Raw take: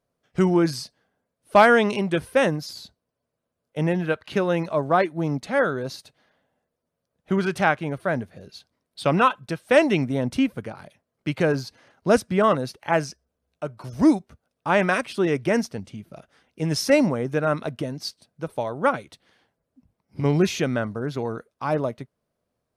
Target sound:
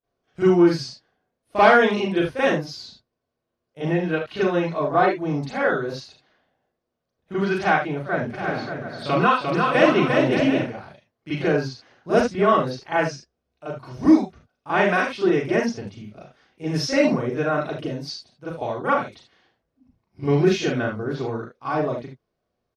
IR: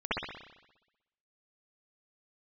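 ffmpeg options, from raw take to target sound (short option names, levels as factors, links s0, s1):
-filter_complex "[0:a]asplit=3[s0][s1][s2];[s0]afade=t=out:st=8.29:d=0.02[s3];[s1]aecho=1:1:350|577.5|725.4|821.5|884:0.631|0.398|0.251|0.158|0.1,afade=t=in:st=8.29:d=0.02,afade=t=out:st=10.58:d=0.02[s4];[s2]afade=t=in:st=10.58:d=0.02[s5];[s3][s4][s5]amix=inputs=3:normalize=0[s6];[1:a]atrim=start_sample=2205,afade=t=out:st=0.27:d=0.01,atrim=end_sample=12348,asetrate=74970,aresample=44100[s7];[s6][s7]afir=irnorm=-1:irlink=0,volume=0.668"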